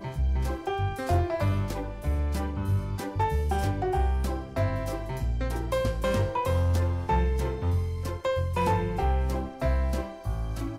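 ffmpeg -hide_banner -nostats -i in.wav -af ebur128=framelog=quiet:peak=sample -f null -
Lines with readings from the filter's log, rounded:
Integrated loudness:
  I:         -28.6 LUFS
  Threshold: -38.6 LUFS
Loudness range:
  LRA:         1.7 LU
  Threshold: -48.4 LUFS
  LRA low:   -29.2 LUFS
  LRA high:  -27.5 LUFS
Sample peak:
  Peak:      -16.1 dBFS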